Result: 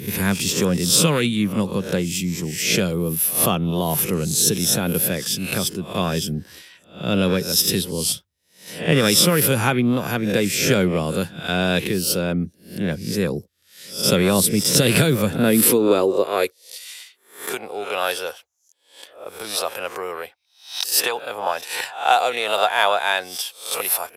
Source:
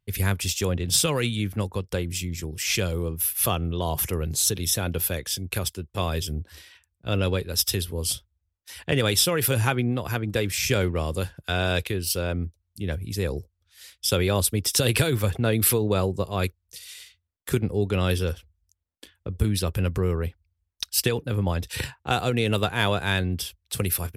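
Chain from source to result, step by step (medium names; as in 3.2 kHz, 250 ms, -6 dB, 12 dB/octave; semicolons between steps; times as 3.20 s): reverse spectral sustain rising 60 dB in 0.44 s; high-pass sweep 180 Hz -> 730 Hz, 15.32–16.99 s; trim +3 dB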